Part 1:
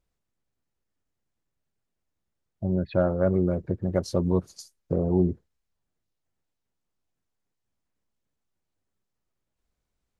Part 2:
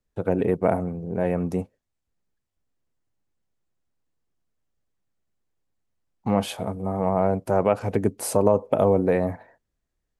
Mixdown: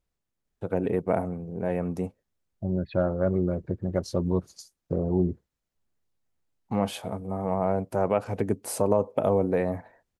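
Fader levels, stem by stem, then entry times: -2.0 dB, -4.0 dB; 0.00 s, 0.45 s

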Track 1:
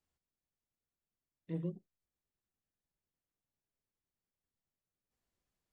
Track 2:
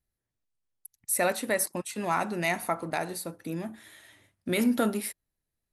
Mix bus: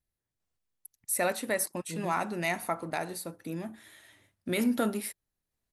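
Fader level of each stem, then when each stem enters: -1.0 dB, -2.5 dB; 0.40 s, 0.00 s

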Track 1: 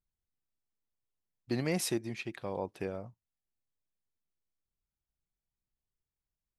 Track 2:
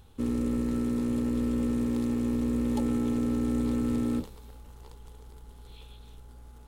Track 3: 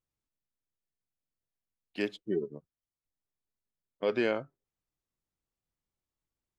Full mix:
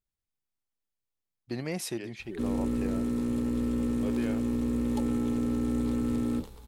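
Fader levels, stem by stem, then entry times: -2.0 dB, -1.0 dB, -10.5 dB; 0.00 s, 2.20 s, 0.00 s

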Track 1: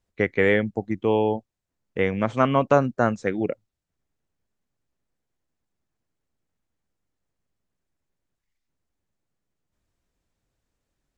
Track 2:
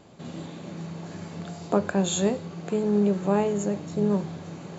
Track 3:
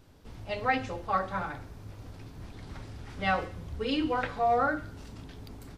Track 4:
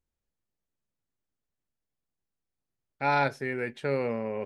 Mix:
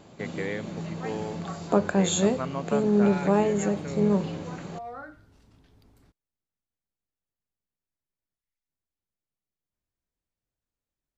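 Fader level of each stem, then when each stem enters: -13.0 dB, +1.0 dB, -14.0 dB, -10.5 dB; 0.00 s, 0.00 s, 0.35 s, 0.00 s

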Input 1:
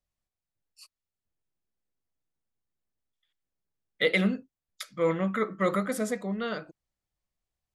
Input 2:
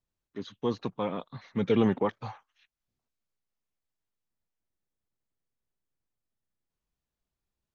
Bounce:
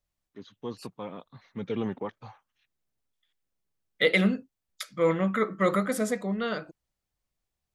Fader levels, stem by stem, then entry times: +2.0 dB, -7.0 dB; 0.00 s, 0.00 s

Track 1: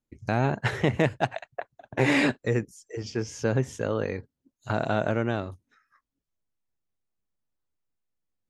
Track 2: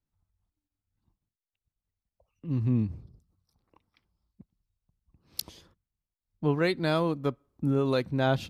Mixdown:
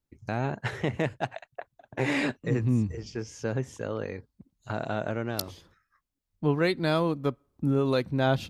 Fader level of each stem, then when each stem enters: -5.0 dB, +1.0 dB; 0.00 s, 0.00 s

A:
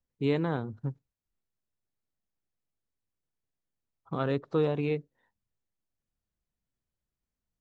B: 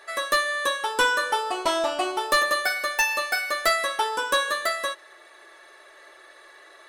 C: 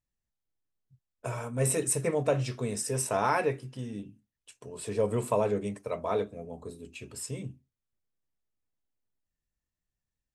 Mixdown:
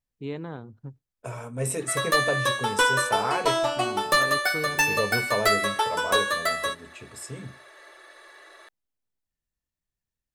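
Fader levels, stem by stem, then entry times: -6.5 dB, 0.0 dB, -1.0 dB; 0.00 s, 1.80 s, 0.00 s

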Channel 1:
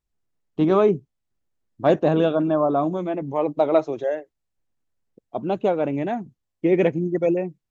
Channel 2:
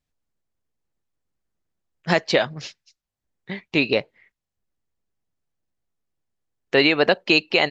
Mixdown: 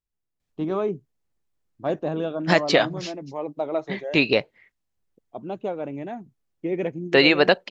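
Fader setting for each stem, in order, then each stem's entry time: -8.0 dB, +0.5 dB; 0.00 s, 0.40 s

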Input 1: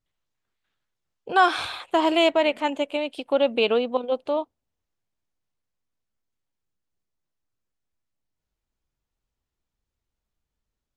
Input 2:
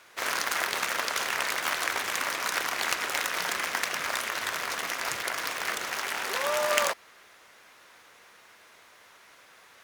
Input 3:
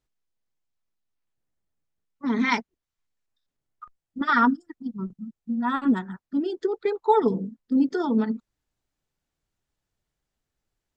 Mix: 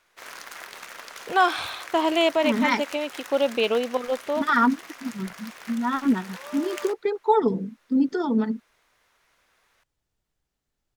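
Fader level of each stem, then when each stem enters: -1.5 dB, -11.5 dB, 0.0 dB; 0.00 s, 0.00 s, 0.20 s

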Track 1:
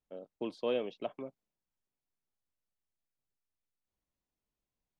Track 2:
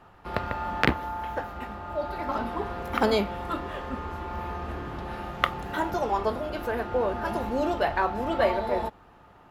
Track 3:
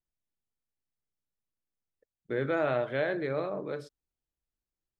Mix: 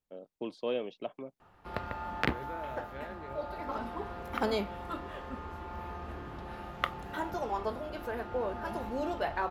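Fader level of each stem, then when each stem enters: -0.5 dB, -7.5 dB, -15.0 dB; 0.00 s, 1.40 s, 0.00 s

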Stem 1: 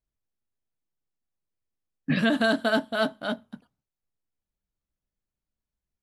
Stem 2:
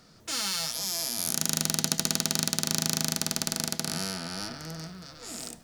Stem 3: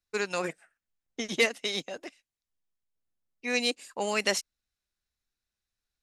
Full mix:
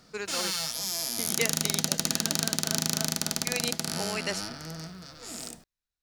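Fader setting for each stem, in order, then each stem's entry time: -17.5 dB, -0.5 dB, -5.5 dB; 0.00 s, 0.00 s, 0.00 s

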